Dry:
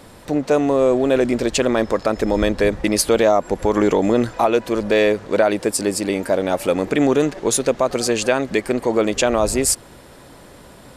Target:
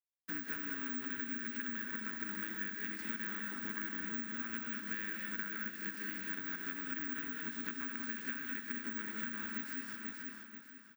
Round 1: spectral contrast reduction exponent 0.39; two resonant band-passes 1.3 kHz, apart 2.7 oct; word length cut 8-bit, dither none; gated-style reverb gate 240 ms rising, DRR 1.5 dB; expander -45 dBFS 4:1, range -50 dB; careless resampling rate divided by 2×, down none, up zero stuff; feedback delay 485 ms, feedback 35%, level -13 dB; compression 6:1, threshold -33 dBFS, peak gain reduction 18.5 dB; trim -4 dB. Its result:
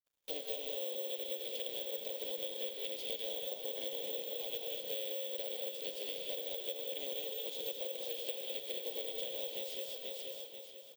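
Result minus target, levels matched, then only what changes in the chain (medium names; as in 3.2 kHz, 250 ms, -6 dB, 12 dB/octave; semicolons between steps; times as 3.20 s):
500 Hz band +15.5 dB
change: two resonant band-passes 630 Hz, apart 2.7 oct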